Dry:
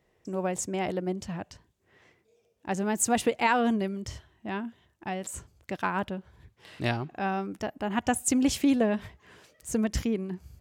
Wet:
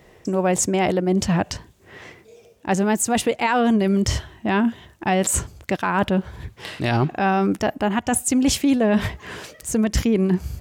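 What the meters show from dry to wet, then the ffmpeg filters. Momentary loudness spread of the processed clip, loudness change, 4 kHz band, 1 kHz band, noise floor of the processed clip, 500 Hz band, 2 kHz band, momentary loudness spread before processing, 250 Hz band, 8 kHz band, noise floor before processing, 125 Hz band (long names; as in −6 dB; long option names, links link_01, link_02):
11 LU, +8.5 dB, +9.5 dB, +7.5 dB, −52 dBFS, +9.0 dB, +7.5 dB, 16 LU, +8.5 dB, +8.5 dB, −70 dBFS, +12.0 dB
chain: -af "areverse,acompressor=threshold=-34dB:ratio=10,areverse,alimiter=level_in=28dB:limit=-1dB:release=50:level=0:latency=1,volume=-9dB"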